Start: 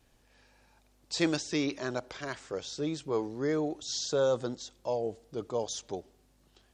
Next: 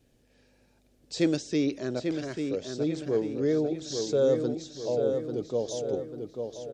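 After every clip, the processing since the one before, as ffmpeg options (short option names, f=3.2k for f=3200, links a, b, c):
-filter_complex "[0:a]equalizer=f=125:t=o:w=1:g=5,equalizer=f=250:t=o:w=1:g=6,equalizer=f=500:t=o:w=1:g=7,equalizer=f=1k:t=o:w=1:g=-9,asplit=2[a][b];[b]adelay=843,lowpass=f=3.7k:p=1,volume=-5.5dB,asplit=2[c][d];[d]adelay=843,lowpass=f=3.7k:p=1,volume=0.5,asplit=2[e][f];[f]adelay=843,lowpass=f=3.7k:p=1,volume=0.5,asplit=2[g][h];[h]adelay=843,lowpass=f=3.7k:p=1,volume=0.5,asplit=2[i][j];[j]adelay=843,lowpass=f=3.7k:p=1,volume=0.5,asplit=2[k][l];[l]adelay=843,lowpass=f=3.7k:p=1,volume=0.5[m];[c][e][g][i][k][m]amix=inputs=6:normalize=0[n];[a][n]amix=inputs=2:normalize=0,volume=-2.5dB"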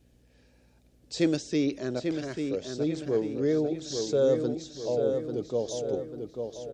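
-af "aeval=exprs='val(0)+0.000708*(sin(2*PI*60*n/s)+sin(2*PI*2*60*n/s)/2+sin(2*PI*3*60*n/s)/3+sin(2*PI*4*60*n/s)/4+sin(2*PI*5*60*n/s)/5)':c=same"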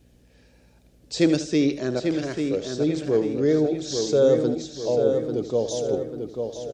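-af "aecho=1:1:78|156|234:0.237|0.0735|0.0228,volume=5.5dB"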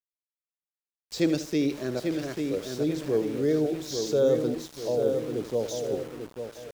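-af "aeval=exprs='val(0)*gte(abs(val(0)),0.0168)':c=same,dynaudnorm=f=180:g=9:m=4dB,volume=-8dB"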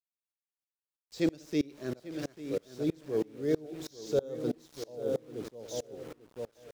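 -af "aeval=exprs='val(0)*pow(10,-28*if(lt(mod(-3.1*n/s,1),2*abs(-3.1)/1000),1-mod(-3.1*n/s,1)/(2*abs(-3.1)/1000),(mod(-3.1*n/s,1)-2*abs(-3.1)/1000)/(1-2*abs(-3.1)/1000))/20)':c=same"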